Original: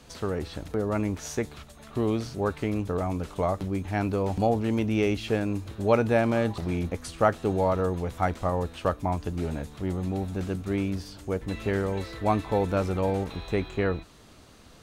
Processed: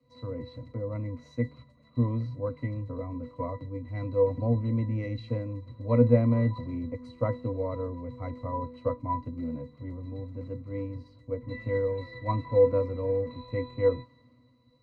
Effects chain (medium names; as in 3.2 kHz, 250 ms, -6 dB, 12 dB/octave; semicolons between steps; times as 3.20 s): pitch-class resonator B, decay 0.15 s; three bands expanded up and down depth 40%; trim +8.5 dB